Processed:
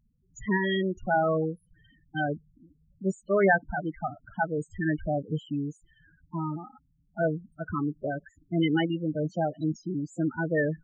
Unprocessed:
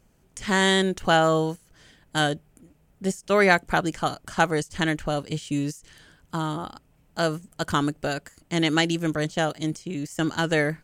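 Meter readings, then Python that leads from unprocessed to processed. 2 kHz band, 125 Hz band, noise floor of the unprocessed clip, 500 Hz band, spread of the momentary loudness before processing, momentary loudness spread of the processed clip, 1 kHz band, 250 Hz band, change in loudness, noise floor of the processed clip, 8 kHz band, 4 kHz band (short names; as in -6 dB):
-6.0 dB, -3.0 dB, -62 dBFS, -3.5 dB, 13 LU, 12 LU, -5.5 dB, -3.0 dB, -4.5 dB, -68 dBFS, under -15 dB, -14.0 dB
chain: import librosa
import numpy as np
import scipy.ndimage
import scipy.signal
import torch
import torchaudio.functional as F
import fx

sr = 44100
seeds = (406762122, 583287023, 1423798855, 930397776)

y = fx.tremolo_random(x, sr, seeds[0], hz=3.5, depth_pct=55)
y = fx.spec_topn(y, sr, count=8)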